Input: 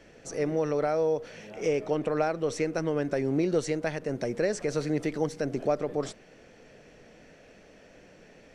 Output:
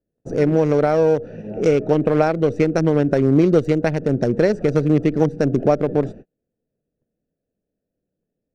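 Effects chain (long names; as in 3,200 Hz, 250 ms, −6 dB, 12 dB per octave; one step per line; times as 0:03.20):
adaptive Wiener filter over 41 samples
noise gate −49 dBFS, range −41 dB
low-shelf EQ 71 Hz −7.5 dB
in parallel at +2.5 dB: downward compressor, threshold −37 dBFS, peak gain reduction 14.5 dB
on the sum: low-shelf EQ 260 Hz +8.5 dB
level +7 dB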